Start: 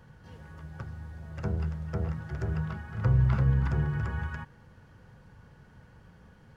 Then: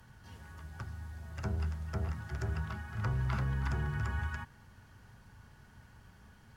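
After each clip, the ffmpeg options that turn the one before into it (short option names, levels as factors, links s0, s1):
-filter_complex "[0:a]equalizer=f=160:t=o:w=0.33:g=-9,equalizer=f=315:t=o:w=0.33:g=-4,equalizer=f=500:t=o:w=0.33:g=-11,acrossover=split=250|500[s0][s1][s2];[s0]alimiter=level_in=1.33:limit=0.0631:level=0:latency=1,volume=0.75[s3];[s3][s1][s2]amix=inputs=3:normalize=0,aemphasis=mode=production:type=cd,volume=0.891"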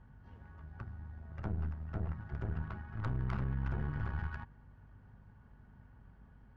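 -af "aeval=exprs='val(0)+0.00158*(sin(2*PI*50*n/s)+sin(2*PI*2*50*n/s)/2+sin(2*PI*3*50*n/s)/3+sin(2*PI*4*50*n/s)/4+sin(2*PI*5*50*n/s)/5)':c=same,adynamicsmooth=sensitivity=2.5:basefreq=1600,aeval=exprs='(tanh(35.5*val(0)+0.75)-tanh(0.75))/35.5':c=same,volume=1.19"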